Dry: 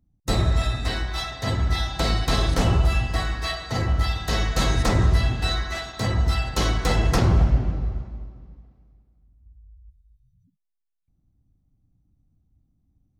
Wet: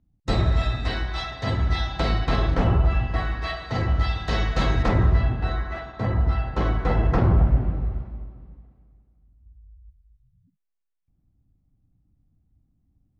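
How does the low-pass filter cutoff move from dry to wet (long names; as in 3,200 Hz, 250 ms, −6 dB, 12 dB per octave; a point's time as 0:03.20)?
0:01.83 3,900 Hz
0:02.79 1,800 Hz
0:03.84 3,700 Hz
0:04.46 3,700 Hz
0:05.38 1,600 Hz
0:07.41 1,600 Hz
0:08.01 2,600 Hz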